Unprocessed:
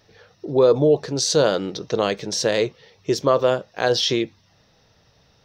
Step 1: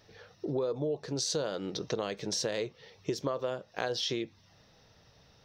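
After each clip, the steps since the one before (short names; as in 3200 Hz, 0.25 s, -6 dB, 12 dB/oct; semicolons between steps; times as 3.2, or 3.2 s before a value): compressor 6:1, threshold -27 dBFS, peak gain reduction 15 dB; gain -3 dB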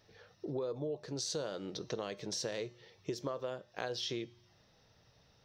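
resonator 120 Hz, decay 0.79 s, harmonics odd, mix 50%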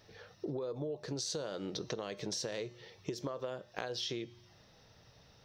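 compressor, threshold -40 dBFS, peak gain reduction 7.5 dB; gain +5 dB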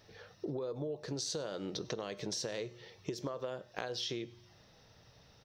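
echo 0.1 s -24 dB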